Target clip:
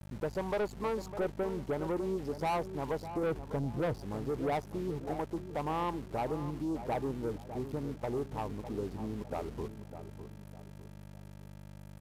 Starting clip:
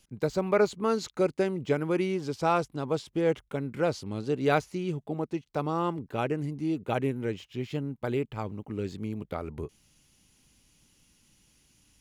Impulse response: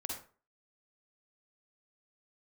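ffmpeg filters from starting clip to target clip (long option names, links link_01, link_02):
-filter_complex "[0:a]asettb=1/sr,asplit=3[link_01][link_02][link_03];[link_01]atrim=end=3.234[link_04];[link_02]atrim=start=3.23:end=3.99,asetpts=PTS-STARTPTS,afade=type=in:duration=0.004:curve=qsin,afade=type=out:start_time=0.756:duration=0.004:curve=qsin,aemphasis=mode=reproduction:type=riaa[link_05];[link_03]atrim=start=3.986[link_06];[link_04][link_05]acrossfade=duration=0.004:curve1=hsin:curve2=qsin[link_07];[link_07][link_06]acrossfade=duration=0.004:curve1=qsin:curve2=hsin,afftdn=noise_reduction=19:noise_floor=-46,firequalizer=gain_entry='entry(170,0);entry(940,12);entry(1600,-10);entry(3000,-26);entry(4600,-5)':delay=0.05:min_phase=1,asplit=2[link_08][link_09];[link_09]acompressor=threshold=-32dB:ratio=6,volume=1dB[link_10];[link_08][link_10]amix=inputs=2:normalize=0,aeval=exprs='val(0)+0.0158*(sin(2*PI*50*n/s)+sin(2*PI*2*50*n/s)/2+sin(2*PI*3*50*n/s)/3+sin(2*PI*4*50*n/s)/4+sin(2*PI*5*50*n/s)/5)':channel_layout=same,asoftclip=type=tanh:threshold=-19dB,aexciter=amount=7.3:drive=1.7:freq=9200,aeval=exprs='val(0)*gte(abs(val(0)),0.0141)':channel_layout=same,asplit=2[link_11][link_12];[link_12]adelay=604,lowpass=frequency=1400:poles=1,volume=-10.5dB,asplit=2[link_13][link_14];[link_14]adelay=604,lowpass=frequency=1400:poles=1,volume=0.39,asplit=2[link_15][link_16];[link_16]adelay=604,lowpass=frequency=1400:poles=1,volume=0.39,asplit=2[link_17][link_18];[link_18]adelay=604,lowpass=frequency=1400:poles=1,volume=0.39[link_19];[link_13][link_15][link_17][link_19]amix=inputs=4:normalize=0[link_20];[link_11][link_20]amix=inputs=2:normalize=0,aresample=32000,aresample=44100,volume=-9dB"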